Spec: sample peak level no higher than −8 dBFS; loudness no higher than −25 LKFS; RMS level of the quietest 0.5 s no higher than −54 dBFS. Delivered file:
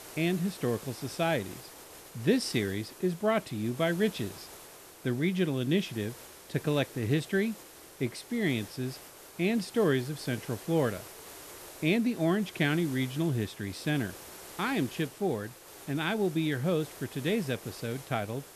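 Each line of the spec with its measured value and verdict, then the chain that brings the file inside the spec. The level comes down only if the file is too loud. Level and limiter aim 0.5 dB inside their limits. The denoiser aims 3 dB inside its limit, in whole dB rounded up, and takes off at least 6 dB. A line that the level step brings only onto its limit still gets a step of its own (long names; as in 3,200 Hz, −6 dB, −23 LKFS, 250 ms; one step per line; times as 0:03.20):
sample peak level −13.0 dBFS: in spec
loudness −31.0 LKFS: in spec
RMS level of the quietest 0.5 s −50 dBFS: out of spec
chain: broadband denoise 7 dB, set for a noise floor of −50 dBFS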